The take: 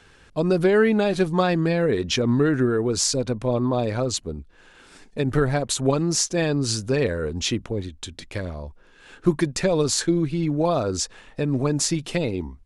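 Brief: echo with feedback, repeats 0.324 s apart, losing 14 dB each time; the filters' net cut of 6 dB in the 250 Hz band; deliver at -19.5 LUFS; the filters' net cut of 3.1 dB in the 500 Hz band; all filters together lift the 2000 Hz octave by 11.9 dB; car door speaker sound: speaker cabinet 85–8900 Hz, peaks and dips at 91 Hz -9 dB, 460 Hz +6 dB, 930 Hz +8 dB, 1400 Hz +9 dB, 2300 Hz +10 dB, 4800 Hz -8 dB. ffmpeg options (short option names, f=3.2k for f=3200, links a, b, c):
-af "highpass=85,equalizer=f=91:t=q:w=4:g=-9,equalizer=f=460:t=q:w=4:g=6,equalizer=f=930:t=q:w=4:g=8,equalizer=f=1.4k:t=q:w=4:g=9,equalizer=f=2.3k:t=q:w=4:g=10,equalizer=f=4.8k:t=q:w=4:g=-8,lowpass=f=8.9k:w=0.5412,lowpass=f=8.9k:w=1.3066,equalizer=f=250:t=o:g=-7,equalizer=f=500:t=o:g=-6.5,equalizer=f=2k:t=o:g=7.5,aecho=1:1:324|648:0.2|0.0399,volume=2.5dB"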